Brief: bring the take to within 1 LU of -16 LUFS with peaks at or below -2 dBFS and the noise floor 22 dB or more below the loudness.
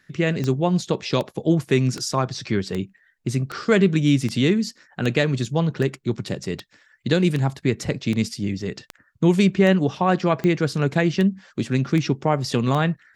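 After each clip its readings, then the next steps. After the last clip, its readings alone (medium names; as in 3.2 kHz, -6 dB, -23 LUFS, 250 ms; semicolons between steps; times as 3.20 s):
clicks found 17; loudness -22.0 LUFS; peak level -5.0 dBFS; loudness target -16.0 LUFS
-> de-click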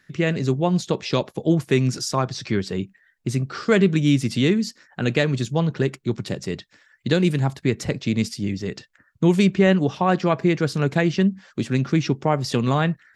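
clicks found 0; loudness -22.0 LUFS; peak level -5.0 dBFS; loudness target -16.0 LUFS
-> trim +6 dB; peak limiter -2 dBFS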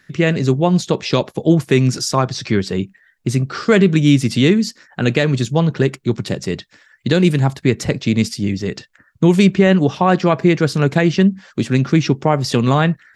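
loudness -16.5 LUFS; peak level -2.0 dBFS; noise floor -55 dBFS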